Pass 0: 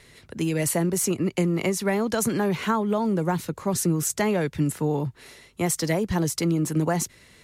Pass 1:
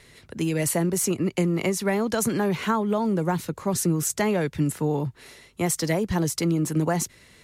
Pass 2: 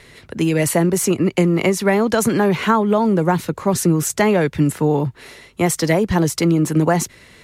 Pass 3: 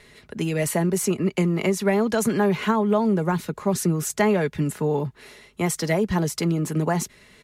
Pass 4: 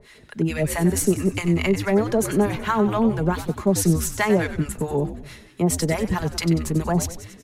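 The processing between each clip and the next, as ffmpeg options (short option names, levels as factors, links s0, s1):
-af anull
-af "bass=f=250:g=-2,treble=f=4000:g=-5,volume=2.66"
-af "aecho=1:1:4.8:0.37,volume=0.473"
-filter_complex "[0:a]acontrast=83,acrossover=split=780[s0][s1];[s0]aeval=exprs='val(0)*(1-1/2+1/2*cos(2*PI*4.6*n/s))':c=same[s2];[s1]aeval=exprs='val(0)*(1-1/2-1/2*cos(2*PI*4.6*n/s))':c=same[s3];[s2][s3]amix=inputs=2:normalize=0,asplit=7[s4][s5][s6][s7][s8][s9][s10];[s5]adelay=94,afreqshift=-92,volume=0.282[s11];[s6]adelay=188,afreqshift=-184,volume=0.151[s12];[s7]adelay=282,afreqshift=-276,volume=0.0822[s13];[s8]adelay=376,afreqshift=-368,volume=0.0442[s14];[s9]adelay=470,afreqshift=-460,volume=0.024[s15];[s10]adelay=564,afreqshift=-552,volume=0.0129[s16];[s4][s11][s12][s13][s14][s15][s16]amix=inputs=7:normalize=0,volume=0.841"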